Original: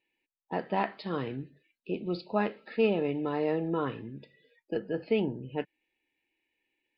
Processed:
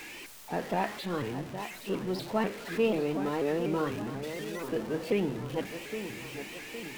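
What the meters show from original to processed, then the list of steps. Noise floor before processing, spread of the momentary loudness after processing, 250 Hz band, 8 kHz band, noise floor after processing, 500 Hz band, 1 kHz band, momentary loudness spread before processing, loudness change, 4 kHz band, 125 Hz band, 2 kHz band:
under -85 dBFS, 10 LU, +0.5 dB, no reading, -45 dBFS, 0.0 dB, 0.0 dB, 14 LU, -1.0 dB, +4.5 dB, +1.0 dB, +2.5 dB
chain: jump at every zero crossing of -36 dBFS; feedback echo behind a low-pass 814 ms, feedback 53%, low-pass 3.6 kHz, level -9.5 dB; vibrato with a chosen wave saw up 4.1 Hz, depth 160 cents; trim -2 dB

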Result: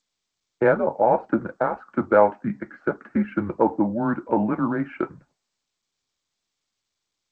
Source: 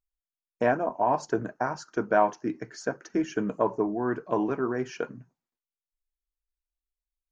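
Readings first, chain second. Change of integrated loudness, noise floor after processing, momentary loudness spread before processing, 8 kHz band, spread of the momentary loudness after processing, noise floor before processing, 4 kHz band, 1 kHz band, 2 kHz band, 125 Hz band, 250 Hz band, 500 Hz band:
+5.0 dB, -82 dBFS, 10 LU, no reading, 10 LU, under -85 dBFS, under -10 dB, +3.5 dB, +3.5 dB, +6.5 dB, +6.0 dB, +5.5 dB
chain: mistuned SSB -110 Hz 290–2400 Hz; trim +6 dB; G.722 64 kbps 16 kHz

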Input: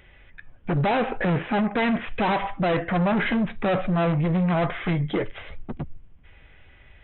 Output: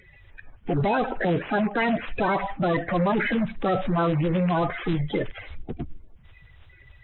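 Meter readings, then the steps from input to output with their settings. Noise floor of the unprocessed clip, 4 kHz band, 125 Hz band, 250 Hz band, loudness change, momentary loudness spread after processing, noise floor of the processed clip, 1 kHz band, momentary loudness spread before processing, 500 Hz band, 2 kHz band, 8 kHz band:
-52 dBFS, -2.5 dB, -2.0 dB, -1.5 dB, -1.0 dB, 14 LU, -53 dBFS, 0.0 dB, 14 LU, 0.0 dB, -0.5 dB, no reading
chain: coarse spectral quantiser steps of 30 dB

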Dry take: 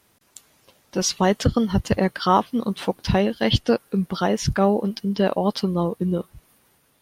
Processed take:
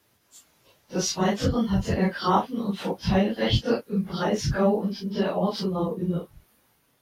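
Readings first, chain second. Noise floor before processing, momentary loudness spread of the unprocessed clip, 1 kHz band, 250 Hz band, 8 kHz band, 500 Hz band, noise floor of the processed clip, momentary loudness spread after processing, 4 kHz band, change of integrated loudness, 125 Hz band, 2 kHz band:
-62 dBFS, 6 LU, -4.0 dB, -3.0 dB, -4.0 dB, -3.5 dB, -66 dBFS, 6 LU, -3.5 dB, -3.5 dB, -2.5 dB, -3.0 dB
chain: phase randomisation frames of 100 ms; peaking EQ 8.9 kHz -5 dB 0.3 oct; trim -3.5 dB

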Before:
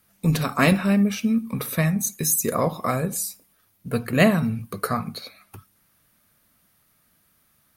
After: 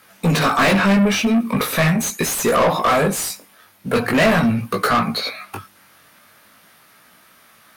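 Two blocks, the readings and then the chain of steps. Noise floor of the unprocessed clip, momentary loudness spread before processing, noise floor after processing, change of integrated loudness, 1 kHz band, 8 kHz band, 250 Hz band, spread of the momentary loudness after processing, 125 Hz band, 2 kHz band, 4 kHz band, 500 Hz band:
-64 dBFS, 11 LU, -52 dBFS, +5.0 dB, +9.5 dB, +2.0 dB, +4.0 dB, 12 LU, +2.0 dB, +8.0 dB, +10.0 dB, +7.0 dB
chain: chorus 0.42 Hz, delay 16.5 ms, depth 4.7 ms; overdrive pedal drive 30 dB, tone 2.7 kHz, clips at -7 dBFS

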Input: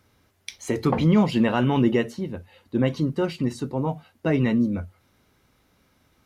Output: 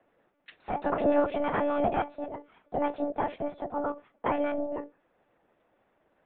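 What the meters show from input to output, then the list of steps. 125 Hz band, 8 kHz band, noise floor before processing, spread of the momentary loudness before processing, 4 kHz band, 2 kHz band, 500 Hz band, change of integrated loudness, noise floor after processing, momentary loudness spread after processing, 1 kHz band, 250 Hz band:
-21.0 dB, no reading, -65 dBFS, 15 LU, -14.5 dB, -6.0 dB, -2.0 dB, -7.0 dB, -72 dBFS, 13 LU, +1.0 dB, -11.5 dB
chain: ring modulator 410 Hz; monotone LPC vocoder at 8 kHz 290 Hz; three-band isolator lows -16 dB, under 190 Hz, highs -15 dB, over 2.3 kHz

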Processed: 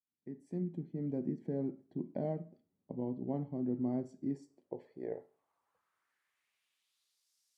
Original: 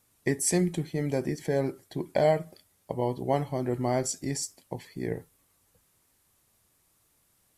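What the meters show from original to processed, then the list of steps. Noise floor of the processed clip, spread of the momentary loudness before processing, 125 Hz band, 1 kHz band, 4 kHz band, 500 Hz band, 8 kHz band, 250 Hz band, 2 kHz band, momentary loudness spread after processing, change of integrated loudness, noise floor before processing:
-85 dBFS, 13 LU, -10.0 dB, -18.0 dB, under -30 dB, -13.0 dB, under -40 dB, -5.5 dB, under -25 dB, 12 LU, -10.0 dB, -69 dBFS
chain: fade-in on the opening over 1.14 s; Schroeder reverb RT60 0.41 s, combs from 28 ms, DRR 15.5 dB; band-pass sweep 230 Hz -> 5.3 kHz, 4.18–7.33 s; trim -1 dB

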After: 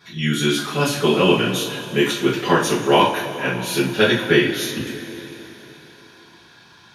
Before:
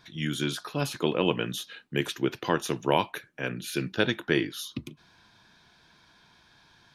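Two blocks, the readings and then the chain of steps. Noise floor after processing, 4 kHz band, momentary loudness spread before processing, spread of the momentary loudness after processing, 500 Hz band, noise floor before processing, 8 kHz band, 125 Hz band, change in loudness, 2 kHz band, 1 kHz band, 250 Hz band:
-49 dBFS, +11.0 dB, 10 LU, 13 LU, +11.0 dB, -61 dBFS, +11.0 dB, +9.0 dB, +10.5 dB, +11.0 dB, +11.0 dB, +10.0 dB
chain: high-pass 83 Hz; two-slope reverb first 0.34 s, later 3.7 s, from -18 dB, DRR -9.5 dB; trim +1 dB

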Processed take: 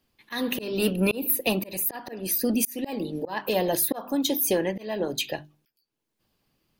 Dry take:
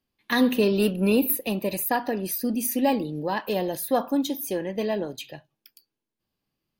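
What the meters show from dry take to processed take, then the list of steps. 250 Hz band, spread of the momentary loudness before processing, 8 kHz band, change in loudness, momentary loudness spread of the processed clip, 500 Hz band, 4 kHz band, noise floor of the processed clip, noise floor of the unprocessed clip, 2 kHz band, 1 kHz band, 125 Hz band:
-3.5 dB, 8 LU, +4.0 dB, -1.0 dB, 8 LU, -2.5 dB, +2.5 dB, -81 dBFS, -84 dBFS, -1.5 dB, -5.5 dB, -1.5 dB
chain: hum notches 50/100/150/200/250/300/350/400 Hz; harmonic-percussive split percussive +6 dB; slow attack 451 ms; in parallel at +1 dB: compression, threshold -34 dBFS, peak gain reduction 13 dB

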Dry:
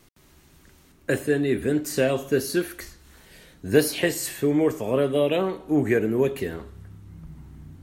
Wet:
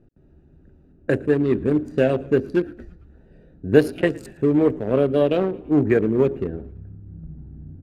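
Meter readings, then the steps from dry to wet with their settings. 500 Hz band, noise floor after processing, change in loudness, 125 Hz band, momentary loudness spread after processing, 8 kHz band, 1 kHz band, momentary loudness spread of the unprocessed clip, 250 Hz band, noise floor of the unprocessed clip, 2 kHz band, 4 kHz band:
+3.0 dB, -54 dBFS, +3.0 dB, +4.5 dB, 19 LU, under -15 dB, +1.5 dB, 16 LU, +4.0 dB, -56 dBFS, -1.0 dB, -6.5 dB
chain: local Wiener filter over 41 samples; low-pass 2 kHz 6 dB/octave; frequency-shifting echo 112 ms, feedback 60%, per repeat -60 Hz, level -23 dB; trim +4.5 dB

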